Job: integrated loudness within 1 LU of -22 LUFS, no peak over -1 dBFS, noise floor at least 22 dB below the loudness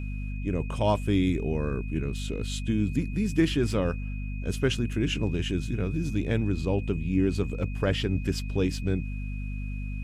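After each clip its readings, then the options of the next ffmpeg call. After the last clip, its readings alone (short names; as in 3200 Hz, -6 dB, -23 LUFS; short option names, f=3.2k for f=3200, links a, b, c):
hum 50 Hz; harmonics up to 250 Hz; hum level -30 dBFS; steady tone 2500 Hz; tone level -46 dBFS; loudness -28.5 LUFS; peak -11.0 dBFS; loudness target -22.0 LUFS
-> -af "bandreject=f=50:t=h:w=6,bandreject=f=100:t=h:w=6,bandreject=f=150:t=h:w=6,bandreject=f=200:t=h:w=6,bandreject=f=250:t=h:w=6"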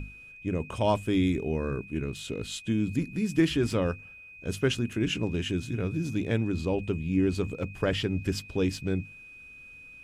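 hum none; steady tone 2500 Hz; tone level -46 dBFS
-> -af "bandreject=f=2.5k:w=30"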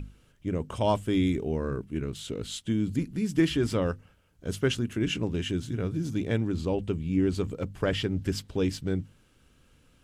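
steady tone none; loudness -29.5 LUFS; peak -12.0 dBFS; loudness target -22.0 LUFS
-> -af "volume=7.5dB"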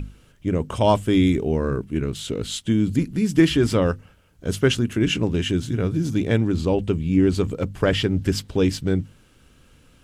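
loudness -22.0 LUFS; peak -4.5 dBFS; noise floor -55 dBFS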